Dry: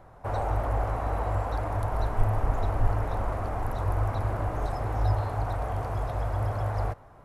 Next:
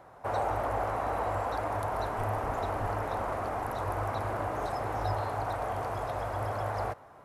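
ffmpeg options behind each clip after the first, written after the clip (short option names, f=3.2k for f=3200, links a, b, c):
-af "highpass=f=330:p=1,volume=2dB"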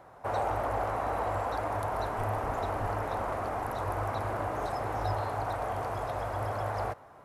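-af "asoftclip=type=hard:threshold=-22dB"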